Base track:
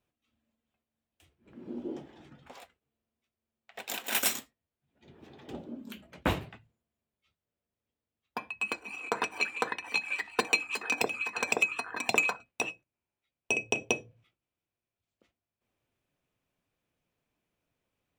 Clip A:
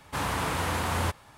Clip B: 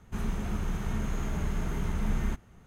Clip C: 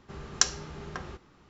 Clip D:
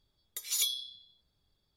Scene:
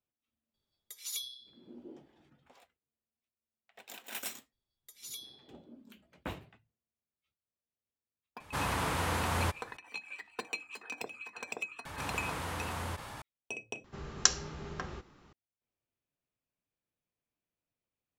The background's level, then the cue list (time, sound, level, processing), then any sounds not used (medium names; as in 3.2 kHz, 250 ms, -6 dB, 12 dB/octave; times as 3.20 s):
base track -12 dB
0.54 s: add D -8.5 dB + bass shelf 90 Hz -9.5 dB
4.52 s: add D -14.5 dB
8.40 s: add A -3.5 dB
11.85 s: add A -11 dB + level flattener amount 70%
13.84 s: replace with C -1.5 dB
not used: B